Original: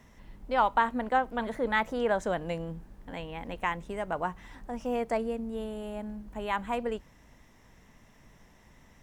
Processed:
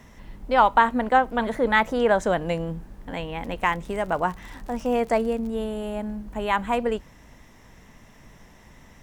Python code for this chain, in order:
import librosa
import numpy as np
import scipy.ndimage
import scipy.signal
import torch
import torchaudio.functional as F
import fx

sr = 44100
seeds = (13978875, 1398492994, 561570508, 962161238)

y = fx.dmg_crackle(x, sr, seeds[0], per_s=67.0, level_db=-41.0, at=(3.42, 5.55), fade=0.02)
y = y * 10.0 ** (7.5 / 20.0)